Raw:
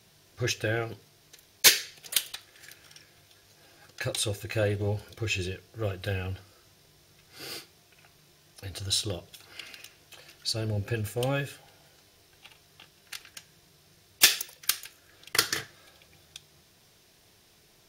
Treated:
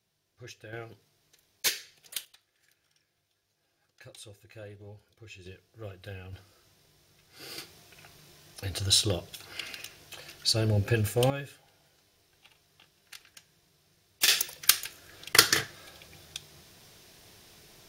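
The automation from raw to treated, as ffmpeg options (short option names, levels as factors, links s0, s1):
-af "asetnsamples=n=441:p=0,asendcmd='0.73 volume volume -10dB;2.25 volume volume -18.5dB;5.46 volume volume -11dB;6.33 volume volume -4dB;7.58 volume volume 4.5dB;11.3 volume volume -7dB;14.28 volume volume 5.5dB',volume=0.133"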